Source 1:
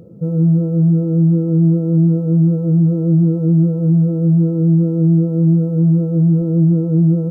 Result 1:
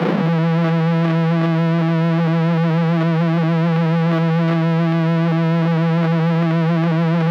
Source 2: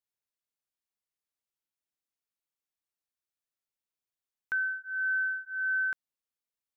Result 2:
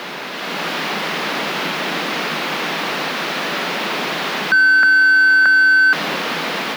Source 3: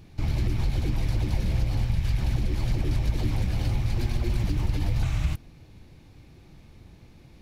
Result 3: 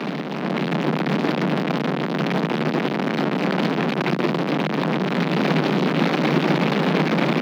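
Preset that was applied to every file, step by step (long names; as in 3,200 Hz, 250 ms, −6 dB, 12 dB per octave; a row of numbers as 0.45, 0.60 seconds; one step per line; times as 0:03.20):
sign of each sample alone
automatic gain control gain up to 7.5 dB
surface crackle 190 per second −37 dBFS
brickwall limiter −17 dBFS
Butterworth high-pass 150 Hz 96 dB per octave
high-frequency loss of the air 320 metres
normalise the peak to −6 dBFS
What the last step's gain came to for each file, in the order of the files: +2.0, +22.0, +4.5 decibels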